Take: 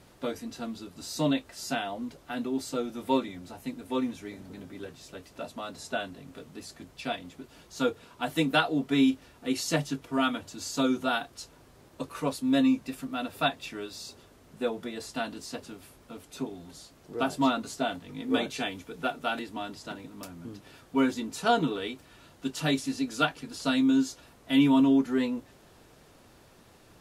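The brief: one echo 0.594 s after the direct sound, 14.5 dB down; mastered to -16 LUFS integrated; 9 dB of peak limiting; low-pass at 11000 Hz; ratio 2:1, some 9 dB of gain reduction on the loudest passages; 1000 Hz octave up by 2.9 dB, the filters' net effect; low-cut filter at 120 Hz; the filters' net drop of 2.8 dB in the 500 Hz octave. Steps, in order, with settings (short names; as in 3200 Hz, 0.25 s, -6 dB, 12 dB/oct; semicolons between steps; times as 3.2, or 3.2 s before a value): HPF 120 Hz; LPF 11000 Hz; bell 500 Hz -6 dB; bell 1000 Hz +6.5 dB; compressor 2:1, threshold -35 dBFS; limiter -26.5 dBFS; echo 0.594 s -14.5 dB; gain +23 dB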